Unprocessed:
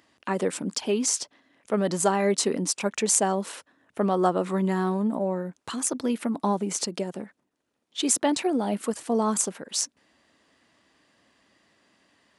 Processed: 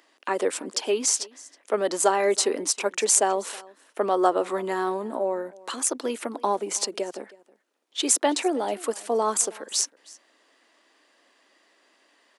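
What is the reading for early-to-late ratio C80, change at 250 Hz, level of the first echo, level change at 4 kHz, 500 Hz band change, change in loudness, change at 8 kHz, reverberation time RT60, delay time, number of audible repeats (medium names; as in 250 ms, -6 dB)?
no reverb, -6.0 dB, -22.5 dB, +2.5 dB, +2.0 dB, +1.0 dB, +2.5 dB, no reverb, 320 ms, 1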